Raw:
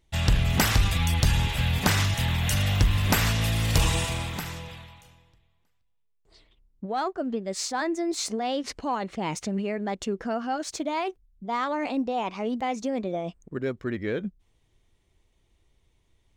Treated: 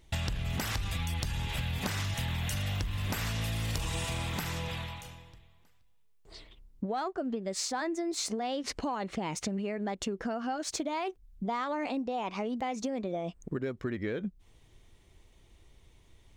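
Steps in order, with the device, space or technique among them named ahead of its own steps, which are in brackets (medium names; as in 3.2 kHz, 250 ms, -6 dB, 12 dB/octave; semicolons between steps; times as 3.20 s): serial compression, leveller first (compression 2.5:1, threshold -25 dBFS, peak gain reduction 6.5 dB; compression 6:1, threshold -39 dBFS, peak gain reduction 16.5 dB); trim +7.5 dB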